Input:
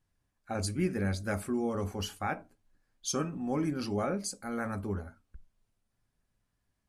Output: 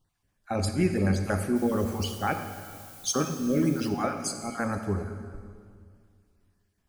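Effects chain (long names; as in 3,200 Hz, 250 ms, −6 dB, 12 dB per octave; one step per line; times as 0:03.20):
time-frequency cells dropped at random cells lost 23%
0:01.55–0:03.88: background noise blue −55 dBFS
convolution reverb RT60 2.1 s, pre-delay 36 ms, DRR 7 dB
level +5.5 dB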